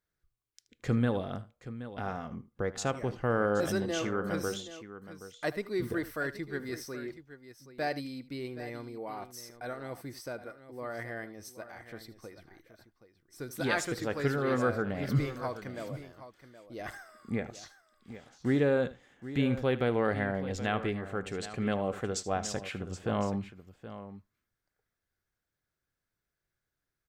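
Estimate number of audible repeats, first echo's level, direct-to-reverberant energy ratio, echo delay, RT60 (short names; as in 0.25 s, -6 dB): 2, -16.5 dB, none, 77 ms, none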